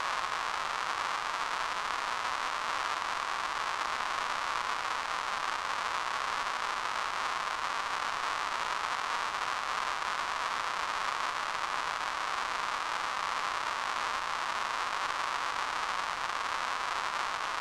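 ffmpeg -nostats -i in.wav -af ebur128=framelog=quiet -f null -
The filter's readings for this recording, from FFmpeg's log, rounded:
Integrated loudness:
  I:         -32.5 LUFS
  Threshold: -42.5 LUFS
Loudness range:
  LRA:         0.2 LU
  Threshold: -52.5 LUFS
  LRA low:   -32.6 LUFS
  LRA high:  -32.4 LUFS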